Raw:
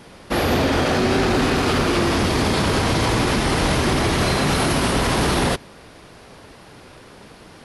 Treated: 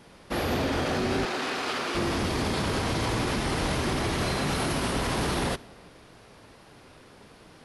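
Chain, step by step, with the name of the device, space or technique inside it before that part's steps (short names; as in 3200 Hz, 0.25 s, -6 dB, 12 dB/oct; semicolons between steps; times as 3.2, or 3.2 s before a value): 1.25–1.95 weighting filter A; compressed reverb return (on a send at -9 dB: reverb RT60 1.0 s, pre-delay 41 ms + compressor 10:1, threshold -28 dBFS, peak gain reduction 14.5 dB); on the sum: gain -8.5 dB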